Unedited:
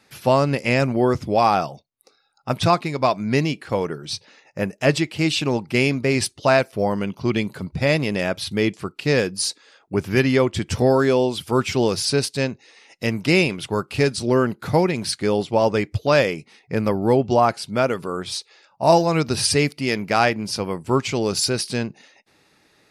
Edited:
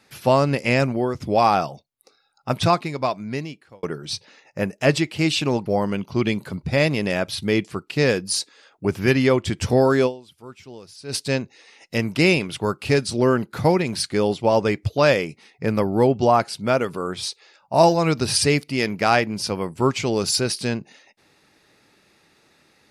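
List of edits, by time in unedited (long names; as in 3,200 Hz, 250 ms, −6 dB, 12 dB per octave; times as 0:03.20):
0:00.81–0:01.20: fade out, to −10 dB
0:02.60–0:03.83: fade out
0:05.66–0:06.75: remove
0:11.15–0:12.23: duck −21 dB, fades 0.31 s exponential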